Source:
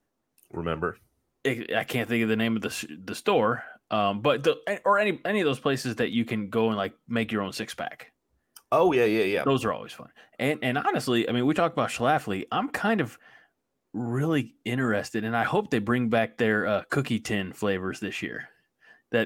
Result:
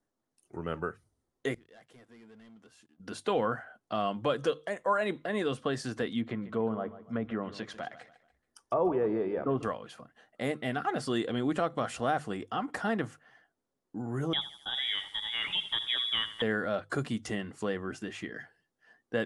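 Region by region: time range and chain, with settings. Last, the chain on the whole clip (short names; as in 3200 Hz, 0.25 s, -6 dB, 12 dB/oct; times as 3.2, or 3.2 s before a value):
1.54–3 notches 50/100/150 Hz + sample leveller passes 3 + flipped gate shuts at -23 dBFS, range -31 dB
6.2–9.63 treble ducked by the level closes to 1100 Hz, closed at -22 dBFS + feedback echo 0.144 s, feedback 37%, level -15 dB
14.33–16.42 inverted band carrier 3600 Hz + lo-fi delay 82 ms, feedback 55%, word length 7-bit, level -13 dB
whole clip: steep low-pass 11000 Hz 96 dB/oct; bell 2500 Hz -7.5 dB 0.36 oct; notches 50/100/150 Hz; gain -6 dB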